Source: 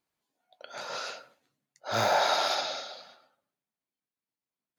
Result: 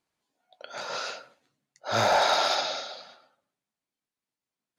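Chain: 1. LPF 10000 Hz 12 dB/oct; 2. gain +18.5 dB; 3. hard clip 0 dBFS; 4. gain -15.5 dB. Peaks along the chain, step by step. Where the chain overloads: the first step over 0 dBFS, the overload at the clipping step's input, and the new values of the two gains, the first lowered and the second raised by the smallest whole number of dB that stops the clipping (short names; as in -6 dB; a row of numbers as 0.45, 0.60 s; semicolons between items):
-13.0, +5.5, 0.0, -15.5 dBFS; step 2, 5.5 dB; step 2 +12.5 dB, step 4 -9.5 dB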